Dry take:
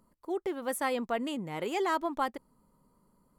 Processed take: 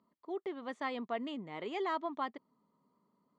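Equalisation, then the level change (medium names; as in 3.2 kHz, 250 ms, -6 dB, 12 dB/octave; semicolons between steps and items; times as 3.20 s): distance through air 130 m; cabinet simulation 280–6200 Hz, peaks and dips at 340 Hz -5 dB, 520 Hz -9 dB, 840 Hz -7 dB, 1.5 kHz -10 dB, 2.6 kHz -6 dB, 5.3 kHz -9 dB; 0.0 dB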